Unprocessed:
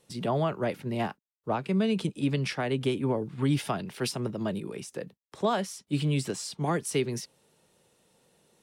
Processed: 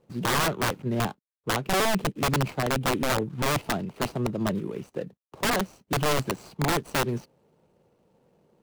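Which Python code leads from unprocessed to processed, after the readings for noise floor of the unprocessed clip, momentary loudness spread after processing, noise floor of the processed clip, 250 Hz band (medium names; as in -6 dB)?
-83 dBFS, 9 LU, -80 dBFS, -0.5 dB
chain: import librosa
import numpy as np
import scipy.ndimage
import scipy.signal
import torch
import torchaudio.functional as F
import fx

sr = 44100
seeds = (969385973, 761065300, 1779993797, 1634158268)

y = scipy.ndimage.median_filter(x, 25, mode='constant')
y = (np.mod(10.0 ** (23.0 / 20.0) * y + 1.0, 2.0) - 1.0) / 10.0 ** (23.0 / 20.0)
y = y * librosa.db_to_amplitude(4.5)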